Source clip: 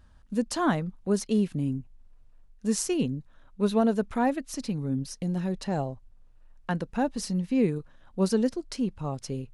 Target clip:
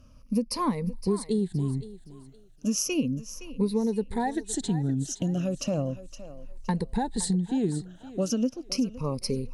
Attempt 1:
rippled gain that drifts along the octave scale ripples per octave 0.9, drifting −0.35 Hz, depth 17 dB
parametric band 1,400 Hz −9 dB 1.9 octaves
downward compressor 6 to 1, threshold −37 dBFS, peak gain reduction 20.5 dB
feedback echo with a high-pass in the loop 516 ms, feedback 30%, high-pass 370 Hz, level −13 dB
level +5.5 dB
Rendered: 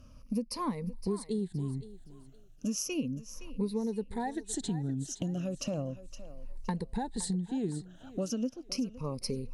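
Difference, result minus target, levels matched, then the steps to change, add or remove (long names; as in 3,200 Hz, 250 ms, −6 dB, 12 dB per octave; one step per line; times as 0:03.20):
downward compressor: peak gain reduction +6.5 dB
change: downward compressor 6 to 1, threshold −29 dBFS, peak gain reduction 14 dB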